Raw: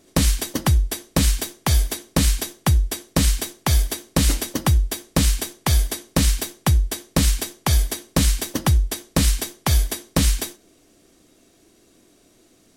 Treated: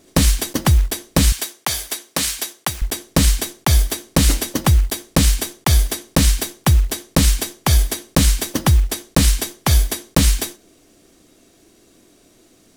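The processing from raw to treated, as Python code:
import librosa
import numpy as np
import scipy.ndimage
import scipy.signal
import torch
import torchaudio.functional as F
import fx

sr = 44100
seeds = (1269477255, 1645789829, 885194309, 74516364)

y = fx.block_float(x, sr, bits=5)
y = fx.highpass(y, sr, hz=800.0, slope=6, at=(1.32, 2.82))
y = y * 10.0 ** (3.5 / 20.0)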